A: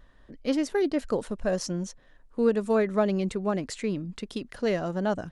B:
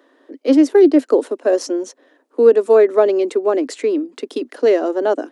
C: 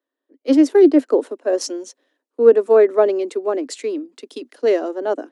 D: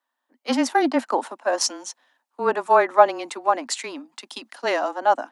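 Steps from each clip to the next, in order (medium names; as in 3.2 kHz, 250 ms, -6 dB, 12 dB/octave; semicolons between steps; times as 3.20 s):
steep high-pass 260 Hz 72 dB/octave; peaking EQ 340 Hz +11 dB 1.9 oct; trim +5 dB
three bands expanded up and down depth 70%; trim -2.5 dB
frequency shift -21 Hz; resonant low shelf 600 Hz -11.5 dB, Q 3; trim +5 dB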